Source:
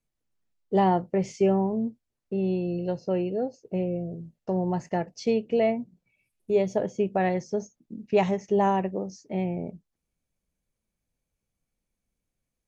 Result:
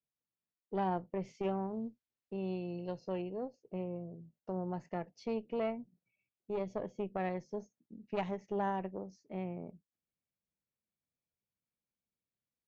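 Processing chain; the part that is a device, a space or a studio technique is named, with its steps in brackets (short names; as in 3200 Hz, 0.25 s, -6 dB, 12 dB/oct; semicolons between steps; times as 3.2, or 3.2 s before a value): valve radio (BPF 93–4300 Hz; tube stage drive 14 dB, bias 0.6; core saturation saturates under 280 Hz); 1.43–3.22 high shelf 2300 Hz +9.5 dB; gain -9 dB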